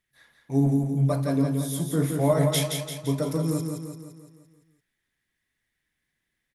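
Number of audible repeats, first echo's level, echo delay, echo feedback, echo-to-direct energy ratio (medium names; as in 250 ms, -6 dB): 6, -5.0 dB, 171 ms, 52%, -3.5 dB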